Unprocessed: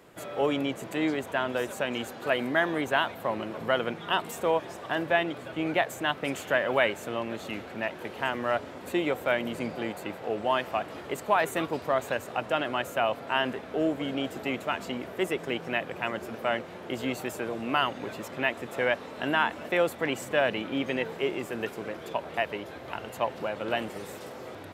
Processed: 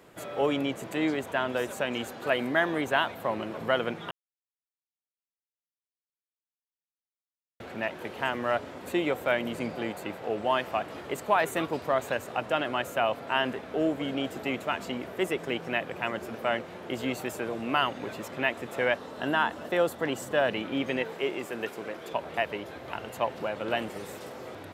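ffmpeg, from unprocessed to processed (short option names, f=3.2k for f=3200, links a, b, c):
-filter_complex "[0:a]asettb=1/sr,asplit=3[a][b][c];[a]atrim=end=18.974[d];[b]atrim=start=18.97:end=20.49,asetpts=PTS-STARTPTS,afade=t=in:d=0.004:c=qsin,afade=t=out:st=1.516:d=0.004:c=qsin,equalizer=f=2.3k:w=3.9:g=-9[e];[c]atrim=start=20.486[f];[d][e]acrossfade=d=0.004:c1=hsin:c2=qsin[g];[g][f]acrossfade=d=0.004:c1=qsin:c2=hsin,asettb=1/sr,asplit=3[h][i][j];[h]atrim=end=21.024[k];[i]atrim=start=21.02:end=22.13,asetpts=PTS-STARTPTS,afade=t=in:d=0.004:c=qsin,afade=t=out:st=1.106:d=0.004:c=qsin,lowshelf=f=140:g=-11[l];[j]atrim=start=22.126[m];[k][l]acrossfade=d=0.004:c1=hsin:c2=qsin[n];[n][m]acrossfade=d=0.004:c1=qsin:c2=hsin,asplit=3[o][p][q];[o]atrim=end=4.11,asetpts=PTS-STARTPTS,afade=t=out:st=4.106:d=0.004:c=hsin[r];[p]atrim=start=4.11:end=7.6,asetpts=PTS-STARTPTS,volume=0[s];[q]atrim=start=7.6,asetpts=PTS-STARTPTS,afade=t=in:d=0.004:c=hsin[t];[r][s][t]concat=n=3:v=0:a=1"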